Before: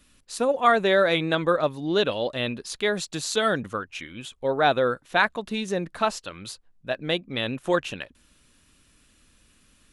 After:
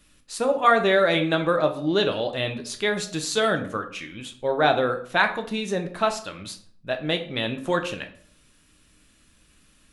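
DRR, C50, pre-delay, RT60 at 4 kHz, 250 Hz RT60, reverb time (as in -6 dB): 5.0 dB, 11.5 dB, 4 ms, 0.40 s, 0.60 s, 0.50 s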